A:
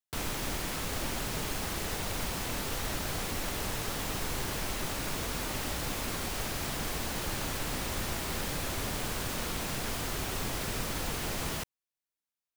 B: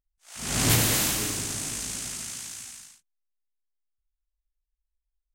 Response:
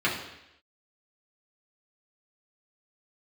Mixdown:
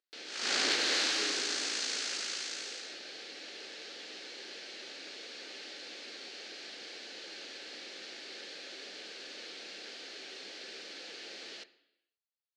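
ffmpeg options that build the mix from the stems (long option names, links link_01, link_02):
-filter_complex "[0:a]equalizer=frequency=1100:width_type=o:width=1.1:gain=-12,volume=-7dB,asplit=2[link_01][link_02];[link_02]volume=-22dB[link_03];[1:a]acompressor=threshold=-27dB:ratio=3,volume=2.5dB[link_04];[2:a]atrim=start_sample=2205[link_05];[link_03][link_05]afir=irnorm=-1:irlink=0[link_06];[link_01][link_04][link_06]amix=inputs=3:normalize=0,highpass=frequency=360:width=0.5412,highpass=frequency=360:width=1.3066,equalizer=frequency=670:width_type=q:width=4:gain=-5,equalizer=frequency=1000:width_type=q:width=4:gain=-7,equalizer=frequency=1600:width_type=q:width=4:gain=4,equalizer=frequency=4300:width_type=q:width=4:gain=6,lowpass=frequency=5600:width=0.5412,lowpass=frequency=5600:width=1.3066"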